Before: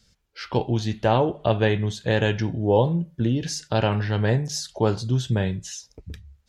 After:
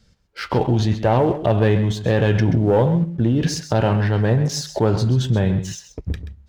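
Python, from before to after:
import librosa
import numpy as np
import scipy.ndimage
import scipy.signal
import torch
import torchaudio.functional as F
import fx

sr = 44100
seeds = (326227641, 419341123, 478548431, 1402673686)

p1 = fx.high_shelf(x, sr, hz=2500.0, db=-11.0)
p2 = fx.leveller(p1, sr, passes=1)
p3 = fx.over_compress(p2, sr, threshold_db=-25.0, ratio=-0.5)
p4 = p2 + F.gain(torch.from_numpy(p3), -2.0).numpy()
y = p4 + 10.0 ** (-12.0 / 20.0) * np.pad(p4, (int(131 * sr / 1000.0), 0))[:len(p4)]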